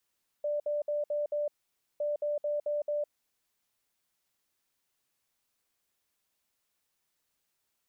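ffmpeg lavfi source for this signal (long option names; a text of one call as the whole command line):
ffmpeg -f lavfi -i "aevalsrc='0.0398*sin(2*PI*590*t)*clip(min(mod(mod(t,1.56),0.22),0.16-mod(mod(t,1.56),0.22))/0.005,0,1)*lt(mod(t,1.56),1.1)':duration=3.12:sample_rate=44100" out.wav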